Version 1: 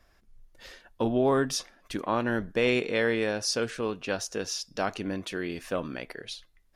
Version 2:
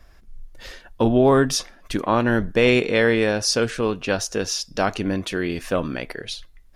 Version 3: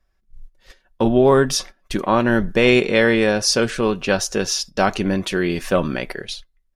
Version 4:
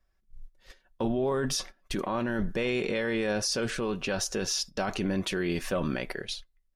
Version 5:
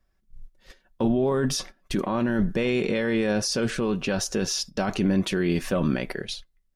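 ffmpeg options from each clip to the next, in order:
ffmpeg -i in.wav -af "lowshelf=frequency=100:gain=8.5,volume=7.5dB" out.wav
ffmpeg -i in.wav -af "agate=range=-16dB:threshold=-35dB:ratio=16:detection=peak,aecho=1:1:5.3:0.31,dynaudnorm=framelen=180:gausssize=9:maxgain=11.5dB,volume=-2.5dB" out.wav
ffmpeg -i in.wav -af "alimiter=limit=-15dB:level=0:latency=1:release=17,volume=-5.5dB" out.wav
ffmpeg -i in.wav -af "equalizer=frequency=190:width_type=o:width=1.8:gain=6,volume=2dB" out.wav

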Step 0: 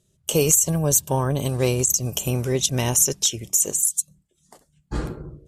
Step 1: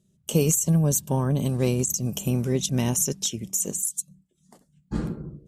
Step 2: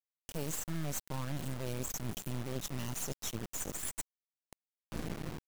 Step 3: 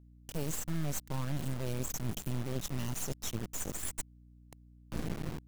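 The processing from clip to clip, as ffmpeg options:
ffmpeg -i in.wav -af "equalizer=frequency=200:width_type=o:width=1:gain=14,volume=-6.5dB" out.wav
ffmpeg -i in.wav -af "areverse,acompressor=threshold=-33dB:ratio=6,areverse,acrusher=bits=4:dc=4:mix=0:aa=0.000001" out.wav
ffmpeg -i in.wav -af "lowshelf=frequency=240:gain=4.5,aeval=exprs='val(0)+0.00158*(sin(2*PI*60*n/s)+sin(2*PI*2*60*n/s)/2+sin(2*PI*3*60*n/s)/3+sin(2*PI*4*60*n/s)/4+sin(2*PI*5*60*n/s)/5)':channel_layout=same" out.wav

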